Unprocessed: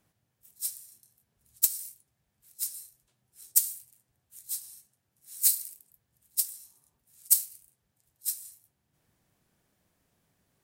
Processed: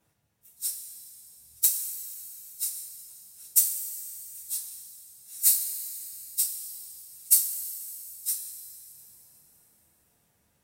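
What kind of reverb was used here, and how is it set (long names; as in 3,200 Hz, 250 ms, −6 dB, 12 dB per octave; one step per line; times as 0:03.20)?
coupled-rooms reverb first 0.21 s, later 3.3 s, from −18 dB, DRR −6 dB
level −3.5 dB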